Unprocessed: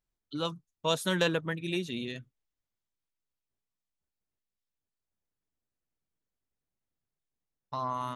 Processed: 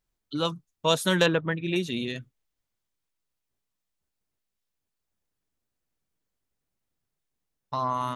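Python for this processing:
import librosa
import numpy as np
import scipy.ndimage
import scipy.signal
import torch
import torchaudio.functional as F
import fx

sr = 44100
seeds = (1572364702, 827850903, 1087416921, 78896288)

y = fx.lowpass(x, sr, hz=3100.0, slope=12, at=(1.26, 1.76))
y = F.gain(torch.from_numpy(y), 5.5).numpy()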